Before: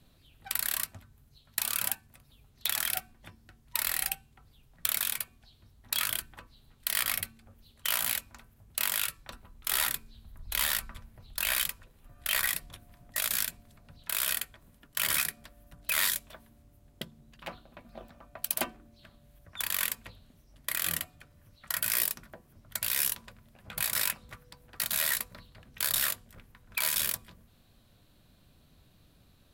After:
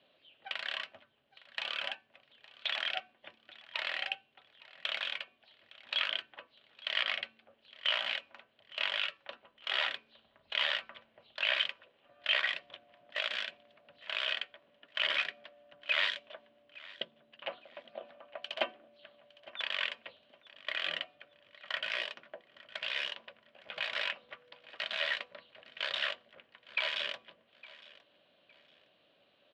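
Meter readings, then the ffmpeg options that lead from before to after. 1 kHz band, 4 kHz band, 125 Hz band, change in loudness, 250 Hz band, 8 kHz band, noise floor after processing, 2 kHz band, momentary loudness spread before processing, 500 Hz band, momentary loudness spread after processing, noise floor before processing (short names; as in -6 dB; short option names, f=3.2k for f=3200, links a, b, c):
-2.0 dB, +1.5 dB, under -20 dB, -4.5 dB, -10.5 dB, under -30 dB, -71 dBFS, +1.0 dB, 13 LU, +4.0 dB, 21 LU, -63 dBFS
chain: -af "highpass=460,equalizer=f=580:t=q:w=4:g=8,equalizer=f=920:t=q:w=4:g=-3,equalizer=f=1.3k:t=q:w=4:g=-3,equalizer=f=3k:t=q:w=4:g=8,lowpass=f=3.4k:w=0.5412,lowpass=f=3.4k:w=1.3066,aecho=1:1:861|1722:0.0944|0.0274"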